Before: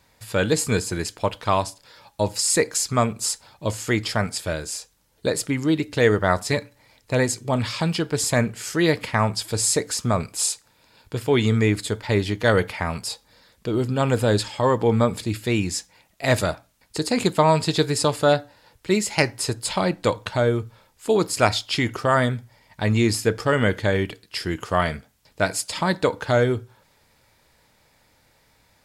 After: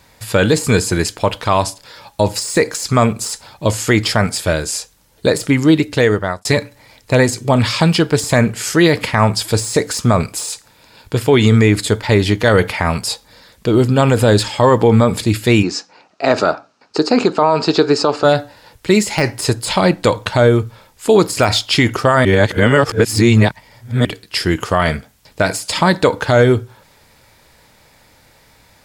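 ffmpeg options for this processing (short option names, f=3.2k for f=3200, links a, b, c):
-filter_complex "[0:a]asplit=3[a][b][c];[a]afade=t=out:st=15.62:d=0.02[d];[b]highpass=240,equalizer=f=270:t=q:w=4:g=4,equalizer=f=400:t=q:w=4:g=5,equalizer=f=760:t=q:w=4:g=4,equalizer=f=1.3k:t=q:w=4:g=7,equalizer=f=2k:t=q:w=4:g=-8,equalizer=f=3.4k:t=q:w=4:g=-9,lowpass=f=5.4k:w=0.5412,lowpass=f=5.4k:w=1.3066,afade=t=in:st=15.62:d=0.02,afade=t=out:st=18.23:d=0.02[e];[c]afade=t=in:st=18.23:d=0.02[f];[d][e][f]amix=inputs=3:normalize=0,asplit=4[g][h][i][j];[g]atrim=end=6.45,asetpts=PTS-STARTPTS,afade=t=out:st=5.53:d=0.92:c=qsin[k];[h]atrim=start=6.45:end=22.252,asetpts=PTS-STARTPTS,afade=t=in:d=0.004:c=hsin[l];[i]atrim=start=22.248:end=24.052,asetpts=PTS-STARTPTS,areverse[m];[j]atrim=start=24.048[n];[k][l]concat=n=2:v=0:a=1[o];[o][m]acrossfade=d=0.004:c1=hsin:c2=hsin[p];[p][n]acrossfade=d=0.004:c1=hsin:c2=hsin,deesser=0.5,alimiter=level_in=11.5dB:limit=-1dB:release=50:level=0:latency=1,volume=-1dB"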